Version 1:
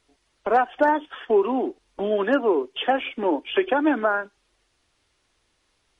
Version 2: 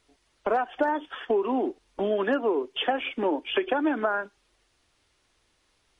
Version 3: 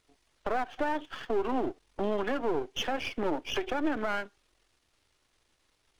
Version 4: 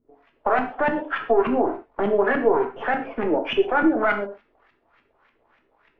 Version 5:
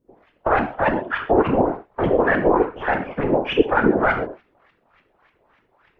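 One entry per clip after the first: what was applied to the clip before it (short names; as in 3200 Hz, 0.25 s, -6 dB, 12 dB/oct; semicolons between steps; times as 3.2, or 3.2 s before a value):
compressor, threshold -21 dBFS, peak gain reduction 7.5 dB
half-wave gain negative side -12 dB; limiter -19 dBFS, peak gain reduction 6.5 dB
overdrive pedal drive 15 dB, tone 2500 Hz, clips at -18.5 dBFS; LFO low-pass saw up 3.4 Hz 220–2500 Hz; non-linear reverb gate 0.16 s falling, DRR 3 dB; gain +3.5 dB
whisperiser; gain +2.5 dB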